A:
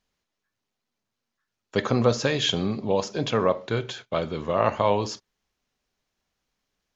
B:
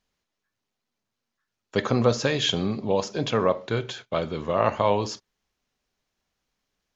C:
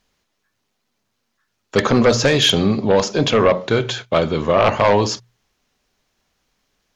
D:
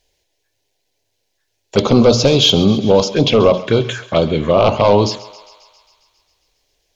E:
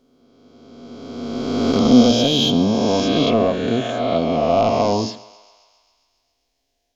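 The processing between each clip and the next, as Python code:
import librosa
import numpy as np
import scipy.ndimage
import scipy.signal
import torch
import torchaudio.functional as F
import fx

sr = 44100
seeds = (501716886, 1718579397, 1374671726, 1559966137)

y1 = x
y2 = fx.hum_notches(y1, sr, base_hz=60, count=3)
y2 = fx.fold_sine(y2, sr, drive_db=8, ceiling_db=-6.0)
y2 = y2 * 10.0 ** (-1.0 / 20.0)
y3 = fx.env_phaser(y2, sr, low_hz=210.0, high_hz=1800.0, full_db=-13.0)
y3 = fx.echo_thinned(y3, sr, ms=135, feedback_pct=71, hz=570.0, wet_db=-17)
y3 = y3 * 10.0 ** (4.5 / 20.0)
y4 = fx.spec_swells(y3, sr, rise_s=2.29)
y4 = fx.small_body(y4, sr, hz=(250.0, 690.0), ring_ms=75, db=14)
y4 = y4 * 10.0 ** (-12.0 / 20.0)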